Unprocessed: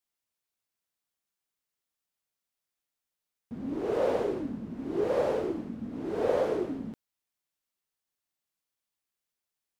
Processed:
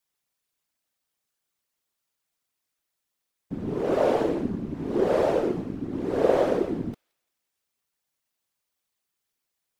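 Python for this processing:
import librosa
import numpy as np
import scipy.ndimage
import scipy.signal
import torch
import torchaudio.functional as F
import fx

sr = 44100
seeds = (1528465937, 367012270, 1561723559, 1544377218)

y = fx.whisperise(x, sr, seeds[0])
y = fx.echo_wet_highpass(y, sr, ms=171, feedback_pct=44, hz=2500.0, wet_db=-23.5)
y = y * librosa.db_to_amplitude(5.5)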